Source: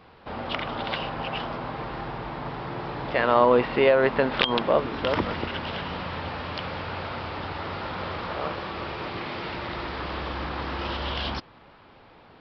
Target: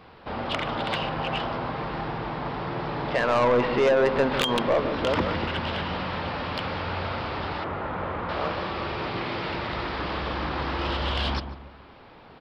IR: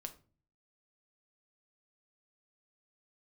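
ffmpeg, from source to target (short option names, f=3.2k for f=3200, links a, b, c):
-filter_complex "[0:a]asettb=1/sr,asplit=3[a][b][c];[a]atrim=end=7.644[d];[b]atrim=start=7.64:end=8.29,asetpts=PTS-STARTPTS,afade=t=in:d=0.004:c=qsin,afade=t=out:st=0.646:d=0.004:c=qsin,lowpass=1.8k[e];[c]atrim=start=8.286[f];[d][e]acrossfade=d=0.004:c1=hsin:c2=qsin[g];[g][f]acrossfade=d=0.004:c1=qsin:c2=hsin,asoftclip=type=tanh:threshold=-18.5dB,asplit=2[h][i];[i]adelay=145,lowpass=f=860:p=1,volume=-8dB,asplit=2[j][k];[k]adelay=145,lowpass=f=860:p=1,volume=0.45,asplit=2[l][m];[m]adelay=145,lowpass=f=860:p=1,volume=0.45,asplit=2[n][o];[o]adelay=145,lowpass=f=860:p=1,volume=0.45,asplit=2[p][q];[q]adelay=145,lowpass=f=860:p=1,volume=0.45[r];[h][j][l][n][p][r]amix=inputs=6:normalize=0,volume=2.5dB"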